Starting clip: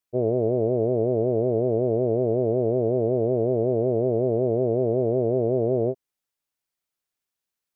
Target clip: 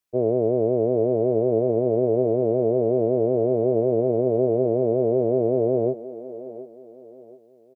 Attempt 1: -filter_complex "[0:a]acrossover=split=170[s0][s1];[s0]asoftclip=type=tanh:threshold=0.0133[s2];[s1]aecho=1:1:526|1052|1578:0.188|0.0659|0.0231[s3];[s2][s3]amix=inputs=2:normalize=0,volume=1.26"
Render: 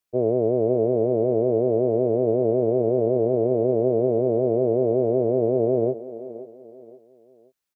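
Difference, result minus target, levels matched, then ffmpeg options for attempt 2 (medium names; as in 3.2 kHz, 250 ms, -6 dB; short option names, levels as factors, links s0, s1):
echo 197 ms early
-filter_complex "[0:a]acrossover=split=170[s0][s1];[s0]asoftclip=type=tanh:threshold=0.0133[s2];[s1]aecho=1:1:723|1446|2169:0.188|0.0659|0.0231[s3];[s2][s3]amix=inputs=2:normalize=0,volume=1.26"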